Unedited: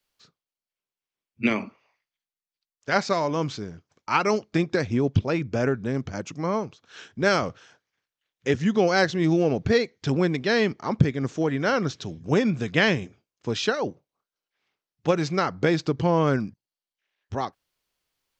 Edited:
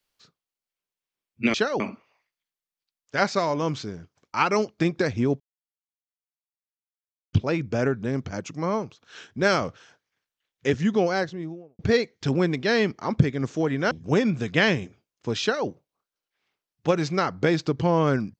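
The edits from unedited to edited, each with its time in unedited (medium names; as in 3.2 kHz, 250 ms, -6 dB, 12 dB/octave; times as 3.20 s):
5.14 s: insert silence 1.93 s
8.59–9.60 s: studio fade out
11.72–12.11 s: delete
13.61–13.87 s: copy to 1.54 s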